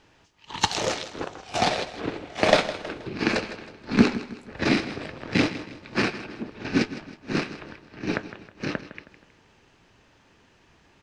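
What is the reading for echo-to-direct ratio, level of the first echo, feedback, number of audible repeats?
−13.0 dB, −14.0 dB, 41%, 3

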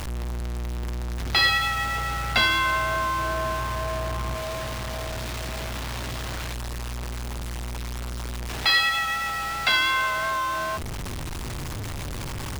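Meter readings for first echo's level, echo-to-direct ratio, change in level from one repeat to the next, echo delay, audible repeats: no echo audible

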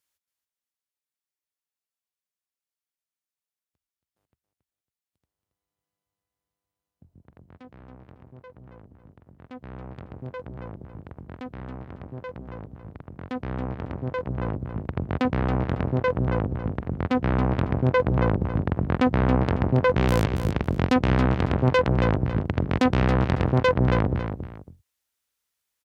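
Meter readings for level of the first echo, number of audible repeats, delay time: −8.0 dB, 2, 276 ms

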